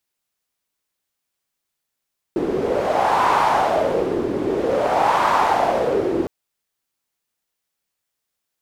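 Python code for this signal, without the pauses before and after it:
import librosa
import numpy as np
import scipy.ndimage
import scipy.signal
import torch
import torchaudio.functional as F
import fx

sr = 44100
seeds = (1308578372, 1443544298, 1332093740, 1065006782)

y = fx.wind(sr, seeds[0], length_s=3.91, low_hz=350.0, high_hz=960.0, q=3.8, gusts=2, swing_db=5.5)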